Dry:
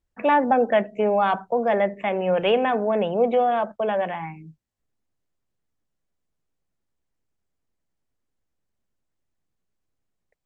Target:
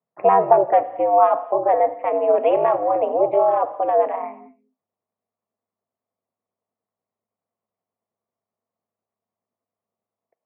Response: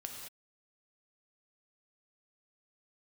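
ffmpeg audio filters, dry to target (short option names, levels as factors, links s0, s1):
-filter_complex "[0:a]aeval=exprs='val(0)*sin(2*PI*100*n/s)':c=same,highpass=f=200:w=0.5412,highpass=f=200:w=1.3066,equalizer=f=220:t=q:w=4:g=3,equalizer=f=310:t=q:w=4:g=-8,equalizer=f=470:t=q:w=4:g=5,equalizer=f=680:t=q:w=4:g=10,equalizer=f=1100:t=q:w=4:g=8,equalizer=f=1600:t=q:w=4:g=-9,lowpass=f=2100:w=0.5412,lowpass=f=2100:w=1.3066,asplit=2[s0][s1];[1:a]atrim=start_sample=2205[s2];[s1][s2]afir=irnorm=-1:irlink=0,volume=0.422[s3];[s0][s3]amix=inputs=2:normalize=0,volume=0.891"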